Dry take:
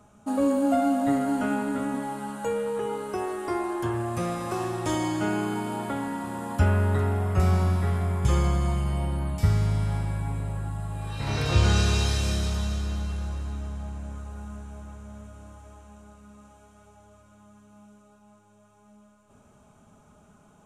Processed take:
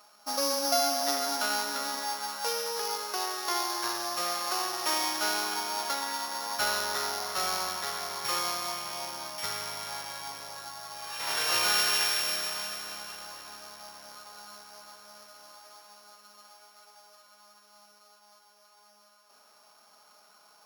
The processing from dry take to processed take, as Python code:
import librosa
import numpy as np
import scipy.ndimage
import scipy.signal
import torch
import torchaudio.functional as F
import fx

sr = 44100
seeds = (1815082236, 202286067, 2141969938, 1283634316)

y = np.r_[np.sort(x[:len(x) // 8 * 8].reshape(-1, 8), axis=1).ravel(), x[len(x) // 8 * 8:]]
y = scipy.signal.sosfilt(scipy.signal.butter(2, 990.0, 'highpass', fs=sr, output='sos'), y)
y = F.gain(torch.from_numpy(y), 5.0).numpy()